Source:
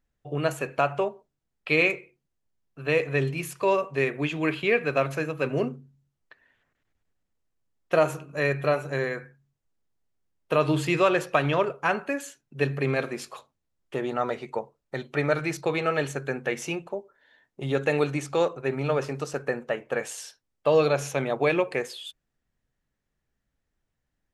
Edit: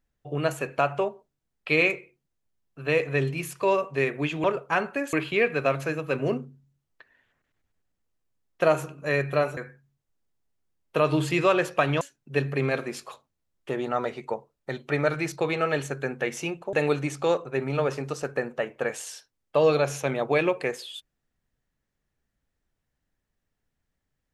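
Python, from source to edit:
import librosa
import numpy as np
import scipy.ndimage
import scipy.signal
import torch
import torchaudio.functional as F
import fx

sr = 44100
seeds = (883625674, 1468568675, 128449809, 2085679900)

y = fx.edit(x, sr, fx.cut(start_s=8.88, length_s=0.25),
    fx.move(start_s=11.57, length_s=0.69, to_s=4.44),
    fx.cut(start_s=16.98, length_s=0.86), tone=tone)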